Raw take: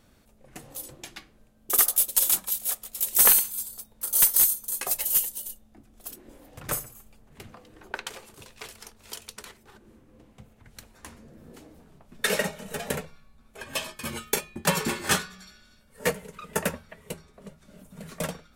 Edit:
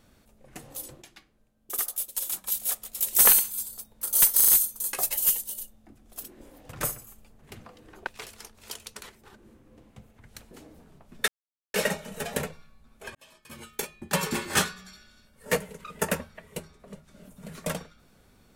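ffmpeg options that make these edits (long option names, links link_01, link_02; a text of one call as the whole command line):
ffmpeg -i in.wav -filter_complex "[0:a]asplit=10[link_01][link_02][link_03][link_04][link_05][link_06][link_07][link_08][link_09][link_10];[link_01]atrim=end=1.02,asetpts=PTS-STARTPTS,afade=type=out:start_time=0.88:duration=0.14:curve=log:silence=0.354813[link_11];[link_02]atrim=start=1.02:end=2.44,asetpts=PTS-STARTPTS,volume=-9dB[link_12];[link_03]atrim=start=2.44:end=4.402,asetpts=PTS-STARTPTS,afade=type=in:duration=0.14:curve=log:silence=0.354813[link_13];[link_04]atrim=start=4.358:end=4.402[link_14];[link_05]atrim=start=4.358:end=4.402[link_15];[link_06]atrim=start=4.358:end=7.952[link_16];[link_07]atrim=start=8.488:end=10.932[link_17];[link_08]atrim=start=11.508:end=12.28,asetpts=PTS-STARTPTS,afade=type=out:start_time=0.768:duration=0.004:curve=hsin,apad=pad_dur=0.46[link_18];[link_09]atrim=start=12.28:end=13.69,asetpts=PTS-STARTPTS,afade=type=in:duration=0.004:curve=hsin,afade=type=out:start_time=1.406:duration=0.004:curve=hsin[link_19];[link_10]atrim=start=13.69,asetpts=PTS-STARTPTS,afade=type=in:duration=1.39[link_20];[link_11][link_12][link_13]concat=n=3:v=0:a=1[link_21];[link_21][link_14]acrossfade=duration=0.004:curve1=hsin:curve2=hsin[link_22];[link_22][link_15]acrossfade=duration=0.004:curve1=hsin:curve2=hsin[link_23];[link_23][link_16]acrossfade=duration=0.004:curve1=hsin:curve2=hsin[link_24];[link_24][link_17]acrossfade=duration=0.004:curve1=hsin:curve2=hsin[link_25];[link_18][link_19][link_20]concat=n=3:v=0:a=1[link_26];[link_25][link_26]acrossfade=duration=0.004:curve1=hsin:curve2=hsin" out.wav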